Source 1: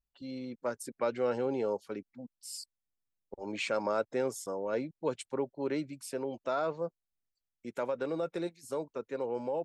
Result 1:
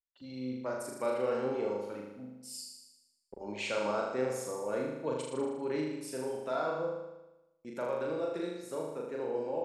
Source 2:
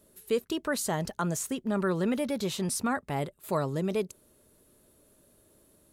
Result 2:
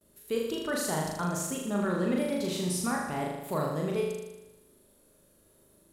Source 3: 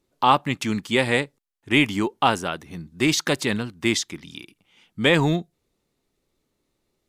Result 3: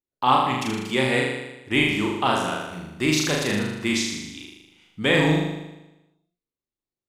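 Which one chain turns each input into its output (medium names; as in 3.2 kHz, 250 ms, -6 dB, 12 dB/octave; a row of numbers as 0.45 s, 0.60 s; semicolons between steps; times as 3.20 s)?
gate with hold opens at -55 dBFS; on a send: flutter echo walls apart 6.7 m, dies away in 1 s; on the sum: trim -4 dB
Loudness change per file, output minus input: 0.0 LU, -0.5 LU, -0.5 LU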